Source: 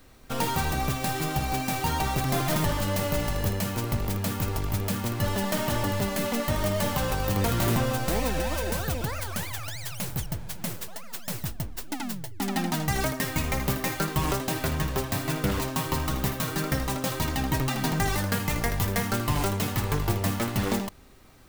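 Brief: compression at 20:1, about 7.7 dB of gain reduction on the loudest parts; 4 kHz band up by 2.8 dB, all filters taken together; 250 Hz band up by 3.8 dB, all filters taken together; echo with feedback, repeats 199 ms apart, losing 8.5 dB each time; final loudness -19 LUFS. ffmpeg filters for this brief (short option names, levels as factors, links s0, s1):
-af "equalizer=f=250:t=o:g=5,equalizer=f=4000:t=o:g=3.5,acompressor=threshold=0.0447:ratio=20,aecho=1:1:199|398|597|796:0.376|0.143|0.0543|0.0206,volume=4.22"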